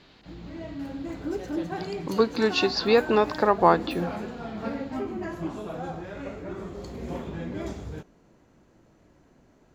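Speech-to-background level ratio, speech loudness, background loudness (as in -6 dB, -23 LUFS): 11.5 dB, -23.5 LUFS, -35.0 LUFS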